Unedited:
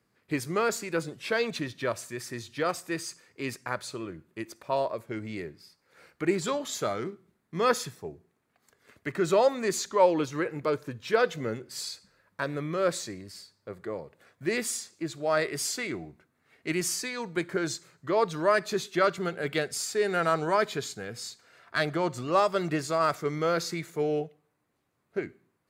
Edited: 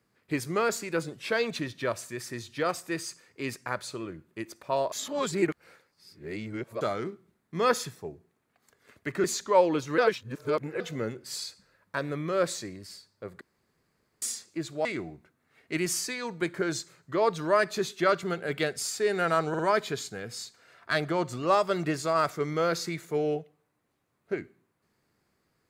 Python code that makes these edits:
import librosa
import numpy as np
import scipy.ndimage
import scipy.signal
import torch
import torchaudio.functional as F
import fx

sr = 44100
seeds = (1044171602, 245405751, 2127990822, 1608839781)

y = fx.edit(x, sr, fx.reverse_span(start_s=4.92, length_s=1.89),
    fx.cut(start_s=9.24, length_s=0.45),
    fx.reverse_span(start_s=10.43, length_s=0.82),
    fx.room_tone_fill(start_s=13.86, length_s=0.81),
    fx.cut(start_s=15.3, length_s=0.5),
    fx.stutter(start_s=20.44, slice_s=0.05, count=3), tone=tone)